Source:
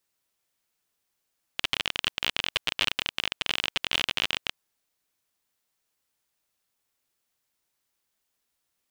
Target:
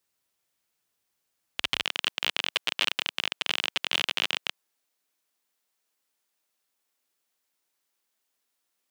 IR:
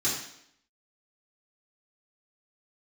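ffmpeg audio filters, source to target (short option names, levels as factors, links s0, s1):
-af "asetnsamples=n=441:p=0,asendcmd='1.83 highpass f 220',highpass=44"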